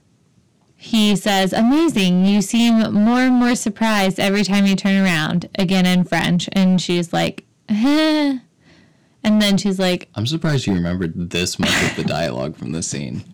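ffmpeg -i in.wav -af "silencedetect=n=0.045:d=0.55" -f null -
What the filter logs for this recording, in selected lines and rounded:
silence_start: 0.00
silence_end: 0.86 | silence_duration: 0.86
silence_start: 8.38
silence_end: 9.24 | silence_duration: 0.87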